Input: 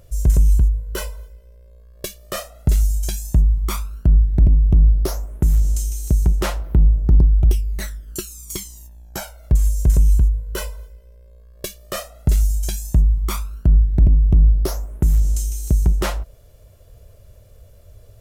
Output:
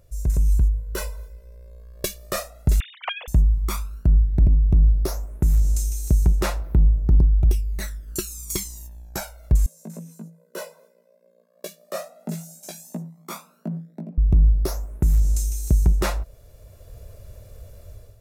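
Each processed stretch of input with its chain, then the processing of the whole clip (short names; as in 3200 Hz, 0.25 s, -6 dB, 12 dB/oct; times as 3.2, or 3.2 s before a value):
2.8–3.28 sine-wave speech + HPF 380 Hz + compressor 12:1, threshold -20 dBFS
9.66–14.18 chorus 2.4 Hz, delay 16 ms, depth 2.4 ms + rippled Chebyshev high-pass 160 Hz, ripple 9 dB
whole clip: notch 3100 Hz, Q 8.5; AGC; gain -7.5 dB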